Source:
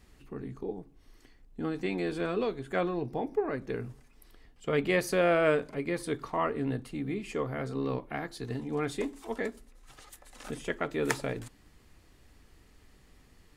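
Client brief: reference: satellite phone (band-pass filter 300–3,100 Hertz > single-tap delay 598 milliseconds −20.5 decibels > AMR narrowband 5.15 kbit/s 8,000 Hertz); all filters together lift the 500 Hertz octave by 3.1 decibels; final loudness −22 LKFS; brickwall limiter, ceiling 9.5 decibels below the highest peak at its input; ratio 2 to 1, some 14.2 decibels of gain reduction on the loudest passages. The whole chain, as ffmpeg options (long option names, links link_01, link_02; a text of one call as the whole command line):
ffmpeg -i in.wav -af "equalizer=frequency=500:width_type=o:gain=4.5,acompressor=threshold=-46dB:ratio=2,alimiter=level_in=7.5dB:limit=-24dB:level=0:latency=1,volume=-7.5dB,highpass=300,lowpass=3100,aecho=1:1:598:0.0944,volume=23.5dB" -ar 8000 -c:a libopencore_amrnb -b:a 5150 out.amr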